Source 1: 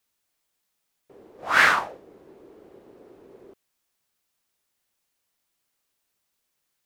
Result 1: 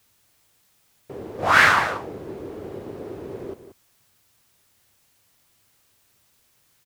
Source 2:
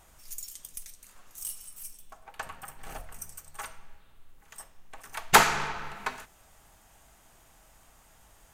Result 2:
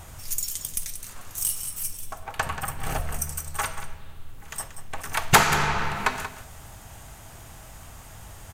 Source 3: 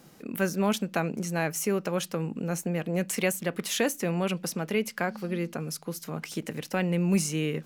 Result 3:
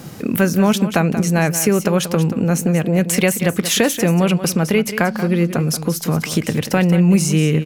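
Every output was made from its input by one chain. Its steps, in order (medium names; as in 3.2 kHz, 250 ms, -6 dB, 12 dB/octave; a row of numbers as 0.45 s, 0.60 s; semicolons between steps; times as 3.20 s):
peaking EQ 100 Hz +11.5 dB 1.2 oct; compression 2:1, threshold -34 dBFS; on a send: delay 183 ms -11.5 dB; on the sum: peak normalisation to -2 dBFS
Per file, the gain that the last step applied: +13.5 dB, +12.0 dB, +16.5 dB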